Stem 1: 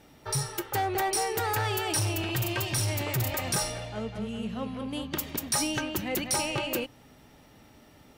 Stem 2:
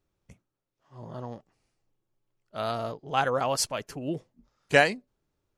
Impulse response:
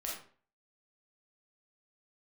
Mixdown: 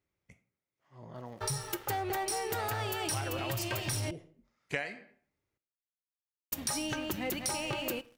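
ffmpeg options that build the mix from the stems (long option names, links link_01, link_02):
-filter_complex "[0:a]aeval=exprs='sgn(val(0))*max(abs(val(0))-0.00282,0)':channel_layout=same,adelay=1150,volume=0.5dB,asplit=3[link_01][link_02][link_03];[link_01]atrim=end=4.11,asetpts=PTS-STARTPTS,afade=type=out:start_time=4.106:duration=0.004:curve=hsin[link_04];[link_02]atrim=start=4.11:end=6.52,asetpts=PTS-STARTPTS,volume=0[link_05];[link_03]atrim=start=6.52,asetpts=PTS-STARTPTS,afade=type=in:duration=0.004:curve=hsin[link_06];[link_04][link_05][link_06]concat=n=3:v=0:a=1,asplit=2[link_07][link_08];[link_08]volume=-21dB[link_09];[1:a]highpass=52,equalizer=frequency=2100:width=3.7:gain=11.5,volume=-8dB,asplit=2[link_10][link_11];[link_11]volume=-11dB[link_12];[2:a]atrim=start_sample=2205[link_13];[link_09][link_12]amix=inputs=2:normalize=0[link_14];[link_14][link_13]afir=irnorm=-1:irlink=0[link_15];[link_07][link_10][link_15]amix=inputs=3:normalize=0,acompressor=threshold=-31dB:ratio=10"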